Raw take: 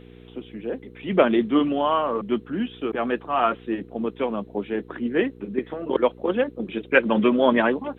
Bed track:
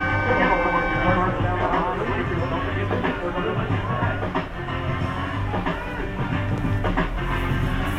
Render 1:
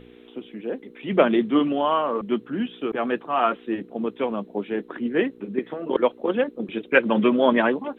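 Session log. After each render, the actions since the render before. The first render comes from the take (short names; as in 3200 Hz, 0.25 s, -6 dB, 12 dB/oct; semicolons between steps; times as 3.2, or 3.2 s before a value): de-hum 60 Hz, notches 3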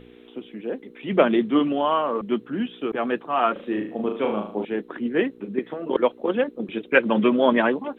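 3.52–4.65 flutter echo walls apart 6.4 m, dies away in 0.49 s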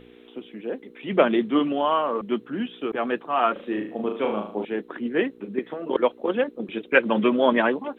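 low shelf 230 Hz -4.5 dB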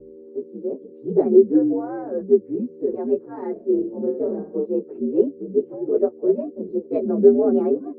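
inharmonic rescaling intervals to 123%; synth low-pass 400 Hz, resonance Q 4.8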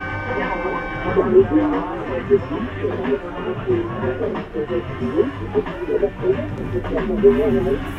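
add bed track -4 dB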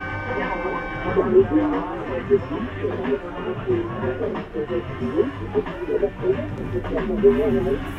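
gain -2.5 dB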